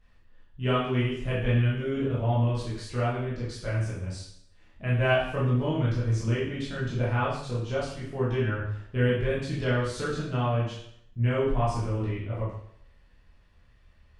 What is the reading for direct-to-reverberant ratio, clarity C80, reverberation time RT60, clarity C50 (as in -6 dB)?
-8.5 dB, 5.5 dB, 0.70 s, 2.0 dB